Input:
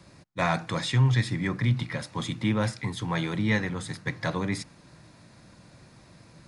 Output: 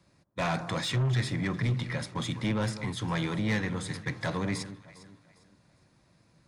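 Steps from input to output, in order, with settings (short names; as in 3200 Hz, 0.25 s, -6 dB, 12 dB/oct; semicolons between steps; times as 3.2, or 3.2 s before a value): gate -43 dBFS, range -12 dB; soft clip -23.5 dBFS, distortion -11 dB; echo with dull and thin repeats by turns 0.202 s, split 1300 Hz, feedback 55%, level -12 dB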